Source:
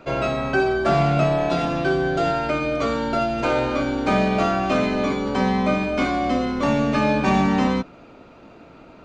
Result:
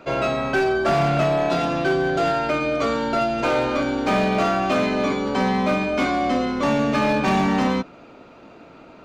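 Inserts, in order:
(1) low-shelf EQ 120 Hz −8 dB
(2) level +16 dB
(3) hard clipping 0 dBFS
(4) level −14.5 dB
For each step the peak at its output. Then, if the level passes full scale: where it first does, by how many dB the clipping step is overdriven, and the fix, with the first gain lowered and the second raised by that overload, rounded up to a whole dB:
−8.0, +8.0, 0.0, −14.5 dBFS
step 2, 8.0 dB
step 2 +8 dB, step 4 −6.5 dB

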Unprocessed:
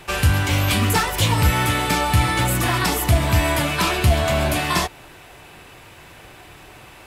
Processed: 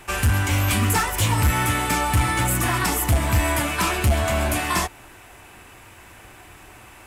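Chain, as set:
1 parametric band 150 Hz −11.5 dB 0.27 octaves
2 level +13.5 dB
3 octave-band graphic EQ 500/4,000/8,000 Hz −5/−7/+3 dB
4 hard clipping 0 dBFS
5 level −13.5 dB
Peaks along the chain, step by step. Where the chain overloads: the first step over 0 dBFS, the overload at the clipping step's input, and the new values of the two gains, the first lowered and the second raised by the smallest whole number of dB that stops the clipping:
−7.0, +6.5, +6.5, 0.0, −13.5 dBFS
step 2, 6.5 dB
step 2 +6.5 dB, step 5 −6.5 dB

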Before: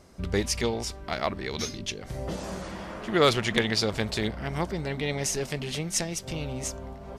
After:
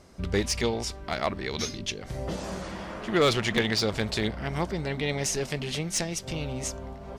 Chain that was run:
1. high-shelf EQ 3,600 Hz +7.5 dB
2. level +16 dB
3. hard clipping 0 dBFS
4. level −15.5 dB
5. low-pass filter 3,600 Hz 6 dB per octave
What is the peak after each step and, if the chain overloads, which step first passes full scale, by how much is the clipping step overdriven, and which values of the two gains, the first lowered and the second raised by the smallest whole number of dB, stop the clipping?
−6.0, +10.0, 0.0, −15.5, −15.5 dBFS
step 2, 10.0 dB
step 2 +6 dB, step 4 −5.5 dB

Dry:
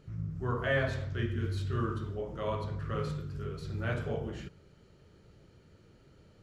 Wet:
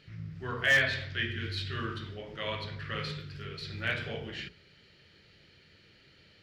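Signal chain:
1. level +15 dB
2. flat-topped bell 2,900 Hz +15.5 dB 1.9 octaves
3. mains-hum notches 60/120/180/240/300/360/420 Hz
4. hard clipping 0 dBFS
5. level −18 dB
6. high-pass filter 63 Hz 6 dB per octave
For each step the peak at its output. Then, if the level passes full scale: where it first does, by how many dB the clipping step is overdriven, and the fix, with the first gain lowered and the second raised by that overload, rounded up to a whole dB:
−2.0, +6.5, +6.0, 0.0, −18.0, −17.0 dBFS
step 2, 6.0 dB
step 1 +9 dB, step 5 −12 dB

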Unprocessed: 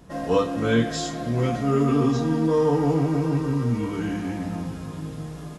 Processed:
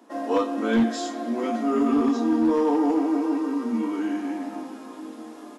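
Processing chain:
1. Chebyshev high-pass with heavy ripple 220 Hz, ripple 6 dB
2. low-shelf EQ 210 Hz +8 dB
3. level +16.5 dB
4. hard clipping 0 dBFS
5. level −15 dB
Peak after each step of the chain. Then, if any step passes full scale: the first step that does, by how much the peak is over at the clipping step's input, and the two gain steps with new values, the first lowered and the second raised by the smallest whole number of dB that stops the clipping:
−12.5, −9.5, +7.0, 0.0, −15.0 dBFS
step 3, 7.0 dB
step 3 +9.5 dB, step 5 −8 dB

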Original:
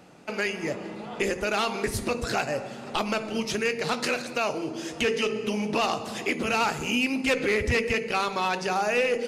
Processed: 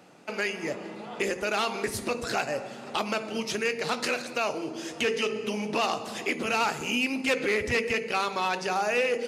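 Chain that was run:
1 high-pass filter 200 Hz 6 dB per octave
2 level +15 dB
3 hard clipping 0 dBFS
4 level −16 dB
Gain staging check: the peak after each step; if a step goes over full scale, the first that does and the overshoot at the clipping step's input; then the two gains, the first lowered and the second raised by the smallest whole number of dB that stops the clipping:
−12.0, +3.0, 0.0, −16.0 dBFS
step 2, 3.0 dB
step 2 +12 dB, step 4 −13 dB

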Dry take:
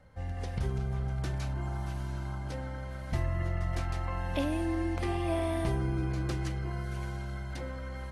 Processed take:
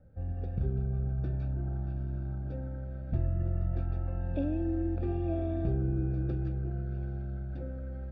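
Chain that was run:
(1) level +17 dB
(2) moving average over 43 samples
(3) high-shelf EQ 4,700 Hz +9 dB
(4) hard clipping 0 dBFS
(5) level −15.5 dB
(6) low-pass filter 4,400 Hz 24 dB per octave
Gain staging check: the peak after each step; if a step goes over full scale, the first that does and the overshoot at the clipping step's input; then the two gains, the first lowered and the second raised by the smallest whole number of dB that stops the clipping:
−0.5, −2.5, −2.5, −2.5, −18.0, −18.0 dBFS
no step passes full scale

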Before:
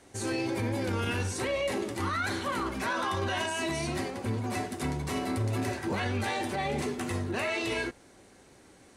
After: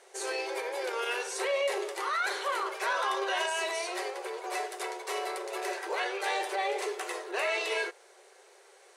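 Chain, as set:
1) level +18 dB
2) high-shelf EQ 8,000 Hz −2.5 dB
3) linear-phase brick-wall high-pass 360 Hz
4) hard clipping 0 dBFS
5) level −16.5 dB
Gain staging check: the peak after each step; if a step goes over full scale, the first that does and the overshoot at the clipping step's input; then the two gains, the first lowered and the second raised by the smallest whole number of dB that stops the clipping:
−1.5, −1.5, −2.5, −2.5, −19.0 dBFS
no step passes full scale

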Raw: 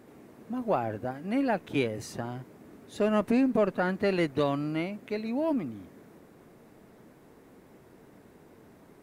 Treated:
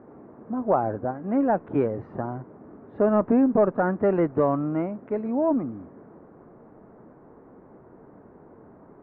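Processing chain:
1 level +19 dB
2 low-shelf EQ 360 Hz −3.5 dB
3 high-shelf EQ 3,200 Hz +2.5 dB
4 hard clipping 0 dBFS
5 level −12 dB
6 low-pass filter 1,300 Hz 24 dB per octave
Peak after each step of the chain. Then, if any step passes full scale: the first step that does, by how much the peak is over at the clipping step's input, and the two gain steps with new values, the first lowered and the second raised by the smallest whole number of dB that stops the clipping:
+5.0, +3.5, +4.0, 0.0, −12.0, −11.0 dBFS
step 1, 4.0 dB
step 1 +15 dB, step 5 −8 dB

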